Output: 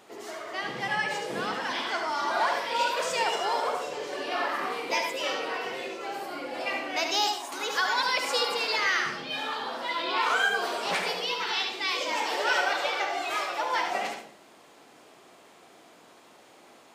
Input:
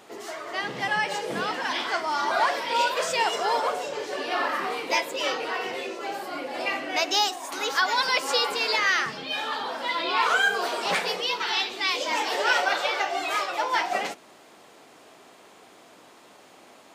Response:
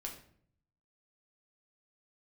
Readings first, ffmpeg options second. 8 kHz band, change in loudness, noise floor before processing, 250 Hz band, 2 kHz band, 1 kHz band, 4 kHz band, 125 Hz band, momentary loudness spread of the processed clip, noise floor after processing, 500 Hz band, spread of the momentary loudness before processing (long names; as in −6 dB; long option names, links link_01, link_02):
−3.0 dB, −2.5 dB, −52 dBFS, −2.5 dB, −2.5 dB, −2.5 dB, −3.0 dB, −2.0 dB, 9 LU, −55 dBFS, −2.5 dB, 9 LU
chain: -filter_complex "[0:a]asplit=2[link_01][link_02];[1:a]atrim=start_sample=2205,adelay=72[link_03];[link_02][link_03]afir=irnorm=-1:irlink=0,volume=-2.5dB[link_04];[link_01][link_04]amix=inputs=2:normalize=0,volume=-4dB"